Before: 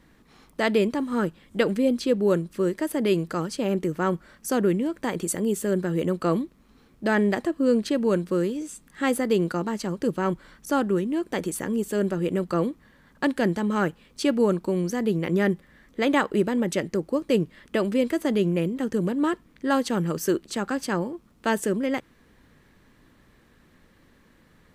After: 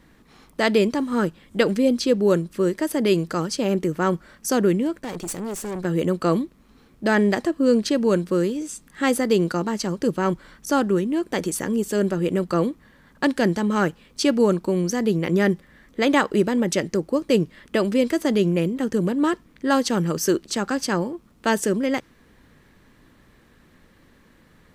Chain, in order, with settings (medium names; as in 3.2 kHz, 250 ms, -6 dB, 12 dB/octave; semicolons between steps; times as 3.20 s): dynamic bell 5.5 kHz, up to +7 dB, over -52 dBFS, Q 1.7; 4.99–5.85 s: valve stage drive 29 dB, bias 0.65; trim +3 dB